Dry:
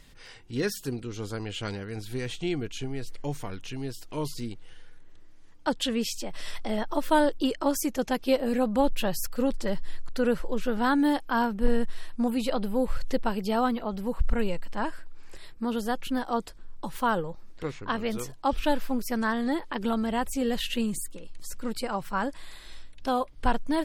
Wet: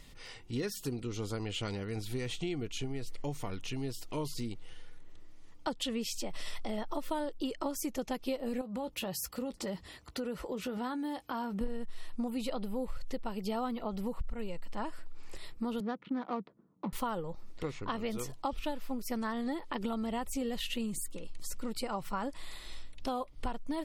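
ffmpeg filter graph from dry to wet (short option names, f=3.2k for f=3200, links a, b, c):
-filter_complex "[0:a]asettb=1/sr,asplit=3[a][b][c];[a]atrim=end=8.614[d];[b]atrim=start=8.61:end=11.61,asetpts=PTS-STARTPTS,afade=t=in:d=0.004:c=qsin,afade=t=out:st=2.996:d=0.004:c=qsin,highpass=f=44:w=0.5412,highpass=f=44:w=1.3066,acompressor=threshold=-33dB:ratio=4:attack=3.2:release=140:knee=1:detection=peak,asplit=2[e][f];[f]adelay=16,volume=-13dB[g];[e][g]amix=inputs=2:normalize=0,atrim=end_sample=132300[h];[c]atrim=start=11.606[i];[d][h]acrossfade=d=0.004:c1=hsin:c2=qsin[j];[j][i]acrossfade=d=0.004:c1=qsin:c2=hsin,asettb=1/sr,asplit=3[k][l][m];[k]atrim=end=15.804[n];[l]atrim=start=15.8:end=16.93,asetpts=PTS-STARTPTS,afade=t=in:d=0.004:c=qsin,afade=t=out:st=1.126:d=0.004:c=qsin,adynamicsmooth=sensitivity=5.5:basefreq=640,highpass=f=150:w=0.5412,highpass=f=150:w=1.3066,equalizer=f=190:t=q:w=4:g=6,equalizer=f=560:t=q:w=4:g=-4,equalizer=f=820:t=q:w=4:g=-6,equalizer=f=2.8k:t=q:w=4:g=-8,lowpass=f=4.1k:w=0.5412,lowpass=f=4.1k:w=1.3066[o];[m]atrim=start=16.926[p];[n][o]acrossfade=d=0.004:c1=hsin:c2=qsin[q];[q][p]acrossfade=d=0.004:c1=qsin:c2=hsin,bandreject=f=1.6k:w=6.6,acompressor=threshold=-32dB:ratio=6"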